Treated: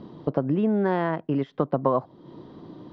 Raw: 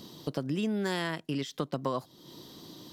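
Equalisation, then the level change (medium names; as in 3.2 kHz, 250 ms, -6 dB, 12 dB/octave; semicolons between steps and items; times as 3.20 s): dynamic bell 730 Hz, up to +5 dB, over -45 dBFS, Q 0.94; low-pass 1.3 kHz 12 dB/octave; distance through air 59 m; +7.0 dB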